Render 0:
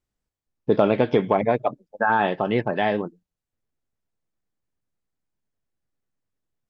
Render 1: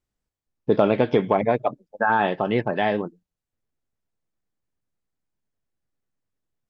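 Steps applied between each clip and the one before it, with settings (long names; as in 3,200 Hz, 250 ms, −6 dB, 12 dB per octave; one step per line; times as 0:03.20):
no processing that can be heard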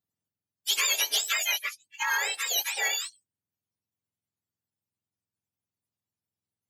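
frequency axis turned over on the octave scale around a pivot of 1,200 Hz
soft clipping −13.5 dBFS, distortion −24 dB
spectral tilt +3 dB per octave
level −5.5 dB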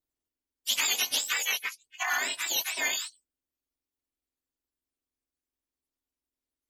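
ring modulation 160 Hz
level +1.5 dB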